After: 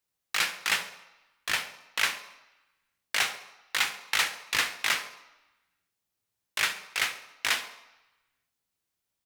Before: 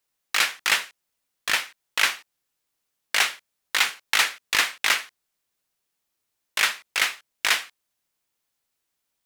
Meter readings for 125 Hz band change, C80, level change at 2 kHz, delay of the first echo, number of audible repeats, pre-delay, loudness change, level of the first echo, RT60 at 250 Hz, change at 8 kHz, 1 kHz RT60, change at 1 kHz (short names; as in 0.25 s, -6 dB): n/a, 14.0 dB, -5.5 dB, 68 ms, 2, 13 ms, -5.5 dB, -17.0 dB, 0.85 s, -5.0 dB, 1.1 s, -5.0 dB